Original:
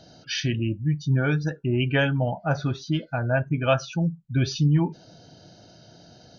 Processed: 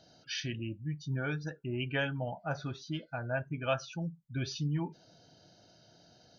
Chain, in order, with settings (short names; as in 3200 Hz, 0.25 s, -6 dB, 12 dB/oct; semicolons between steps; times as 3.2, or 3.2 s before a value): low shelf 430 Hz -5 dB; gain -8.5 dB